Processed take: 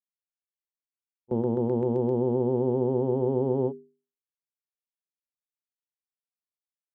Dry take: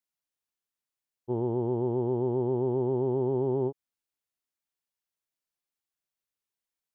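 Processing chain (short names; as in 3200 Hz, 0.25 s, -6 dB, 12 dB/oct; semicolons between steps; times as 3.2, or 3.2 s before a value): gate with hold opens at -19 dBFS; notches 50/100/150/200/250/300/350/400 Hz; small resonant body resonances 220/500 Hz, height 10 dB, ringing for 60 ms; gain +1 dB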